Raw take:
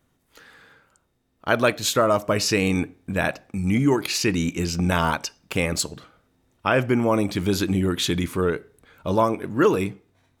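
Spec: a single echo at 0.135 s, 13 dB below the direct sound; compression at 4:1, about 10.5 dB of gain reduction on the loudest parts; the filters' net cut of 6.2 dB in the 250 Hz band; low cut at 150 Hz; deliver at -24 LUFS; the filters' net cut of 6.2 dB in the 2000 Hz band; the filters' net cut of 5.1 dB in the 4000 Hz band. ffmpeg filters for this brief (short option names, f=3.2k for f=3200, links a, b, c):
-af "highpass=150,equalizer=f=250:t=o:g=-7.5,equalizer=f=2k:t=o:g=-7.5,equalizer=f=4k:t=o:g=-4.5,acompressor=threshold=-29dB:ratio=4,aecho=1:1:135:0.224,volume=9.5dB"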